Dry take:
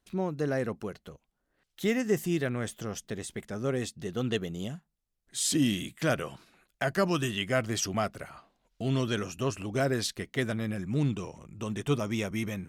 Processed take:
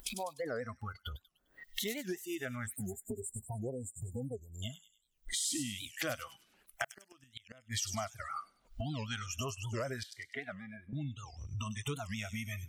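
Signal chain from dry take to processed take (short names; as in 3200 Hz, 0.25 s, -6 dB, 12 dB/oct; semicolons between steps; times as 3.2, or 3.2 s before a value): upward compressor, threshold -30 dBFS; 2.67–3.27 small resonant body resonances 240/400 Hz, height 11 dB, ringing for 70 ms; spectral noise reduction 26 dB; 6.84–7.76 flipped gate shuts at -22 dBFS, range -42 dB; compressor 5:1, threshold -44 dBFS, peak gain reduction 19.5 dB; 2.67–4.63 spectral delete 1000–7000 Hz; 10.03–10.93 three-band isolator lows -18 dB, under 280 Hz, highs -24 dB, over 2400 Hz; thin delay 0.1 s, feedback 40%, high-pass 5200 Hz, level -4 dB; dynamic EQ 240 Hz, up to -5 dB, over -55 dBFS, Q 1; record warp 78 rpm, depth 250 cents; gain +8.5 dB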